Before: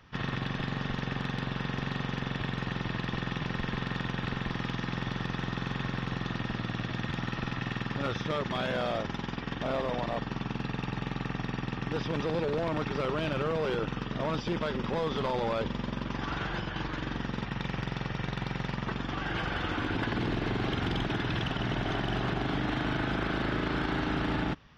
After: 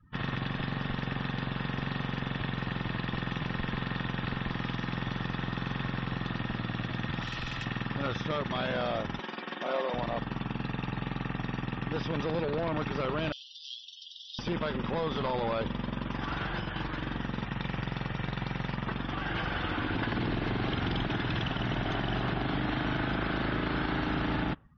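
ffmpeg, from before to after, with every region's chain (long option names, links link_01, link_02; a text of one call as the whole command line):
ffmpeg -i in.wav -filter_complex "[0:a]asettb=1/sr,asplit=3[link_01][link_02][link_03];[link_01]atrim=end=7.214[link_04];[link_02]atrim=start=7.21:end=7.65,asetpts=PTS-STARTPTS,afade=type=in:duration=0.004:curve=qsin,afade=type=out:start_time=0.436:duration=0.004:curve=qsin,bass=frequency=250:gain=-8,treble=frequency=4000:gain=-5,acrossover=split=120|3000[link_05][link_06][link_07];[link_06]acompressor=threshold=-46dB:ratio=8:attack=3.2:release=140:knee=2.83:detection=peak[link_08];[link_05][link_08][link_07]amix=inputs=3:normalize=0,aeval=exprs='0.0316*sin(PI/2*2.24*val(0)/0.0316)':channel_layout=same[link_09];[link_03]atrim=start=7.646[link_10];[link_04][link_09]acrossfade=duration=0.004:curve1=hsin:curve2=qsin[link_11];[link_11][link_10]acrossfade=duration=0.004:curve1=qsin:curve2=hsin,asettb=1/sr,asplit=3[link_12][link_13][link_14];[link_12]atrim=end=9.194[link_15];[link_13]atrim=start=9.19:end=9.94,asetpts=PTS-STARTPTS,afade=type=in:duration=0.004:curve=qsin,afade=type=out:start_time=0.746:duration=0.004:curve=qsin,highpass=frequency=260:width=0.5412,highpass=frequency=260:width=1.3066,aecho=1:1:5.5:0.49,atrim=end_sample=33075[link_16];[link_14]atrim=start=9.936[link_17];[link_15][link_16]acrossfade=duration=0.004:curve1=hsin:curve2=qsin[link_18];[link_18][link_17]acrossfade=duration=0.004:curve1=qsin:curve2=hsin,asettb=1/sr,asplit=3[link_19][link_20][link_21];[link_19]atrim=end=13.324[link_22];[link_20]atrim=start=13.32:end=14.39,asetpts=PTS-STARTPTS,afade=type=in:duration=0.004:curve=qsin,afade=type=out:start_time=1.066:duration=0.004:curve=qsin,asuperpass=centerf=4300:order=12:qfactor=1.4,highshelf=frequency=4000:gain=10.5[link_23];[link_21]atrim=start=14.386[link_24];[link_22][link_23]acrossfade=duration=0.004:curve1=hsin:curve2=qsin[link_25];[link_25][link_24]acrossfade=duration=0.004:curve1=qsin:curve2=hsin,afftdn=noise_reduction=28:noise_floor=-52,equalizer=frequency=410:width_type=o:width=0.43:gain=-2.5" out.wav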